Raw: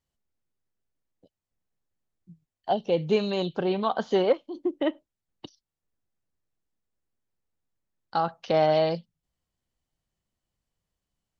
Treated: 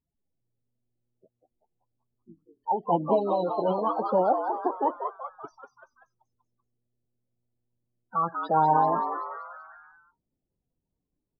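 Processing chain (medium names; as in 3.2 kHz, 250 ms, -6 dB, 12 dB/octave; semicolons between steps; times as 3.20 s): loudest bins only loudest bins 16; formant shift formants +5 st; frequency-shifting echo 192 ms, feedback 51%, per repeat +120 Hz, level -6.5 dB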